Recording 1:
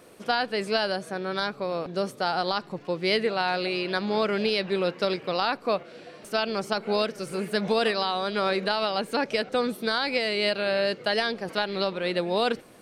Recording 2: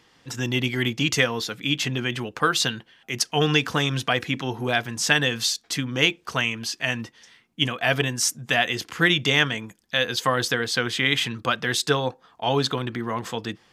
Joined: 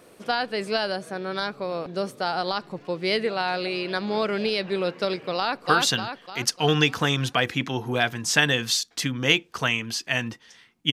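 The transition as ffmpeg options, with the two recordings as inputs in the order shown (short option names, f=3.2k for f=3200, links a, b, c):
-filter_complex "[0:a]apad=whole_dur=10.92,atrim=end=10.92,atrim=end=5.662[a];[1:a]atrim=start=2.388:end=7.65[b];[a][b]acrossfade=d=0.004:c1=hsin:c2=hsin,asplit=2[c][d];[d]afade=t=in:st=5.37:d=0.01,afade=t=out:st=5.66:d=0.01,aecho=0:1:300|600|900|1200|1500|1800|2100:0.891251|0.445625|0.222813|0.111406|0.0557032|0.0278516|0.0139258[e];[c][e]amix=inputs=2:normalize=0"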